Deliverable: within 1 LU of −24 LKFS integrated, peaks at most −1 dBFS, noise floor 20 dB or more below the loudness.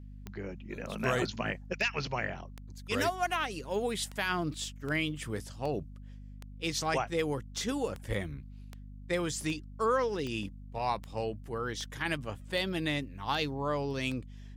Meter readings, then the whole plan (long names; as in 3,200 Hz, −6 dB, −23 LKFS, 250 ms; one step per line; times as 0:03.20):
number of clicks 19; mains hum 50 Hz; hum harmonics up to 250 Hz; level of the hum −44 dBFS; integrated loudness −33.5 LKFS; sample peak −18.5 dBFS; target loudness −24.0 LKFS
→ click removal
hum removal 50 Hz, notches 5
level +9.5 dB